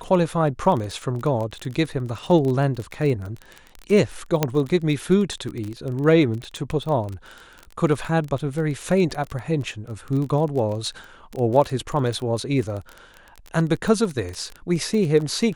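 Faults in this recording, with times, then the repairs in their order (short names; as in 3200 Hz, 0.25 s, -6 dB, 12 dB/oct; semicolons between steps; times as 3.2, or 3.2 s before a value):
crackle 23/s -26 dBFS
4.43 pop -4 dBFS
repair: de-click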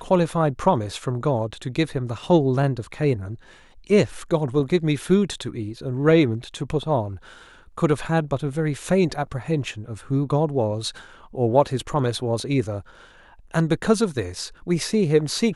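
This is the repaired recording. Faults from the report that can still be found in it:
none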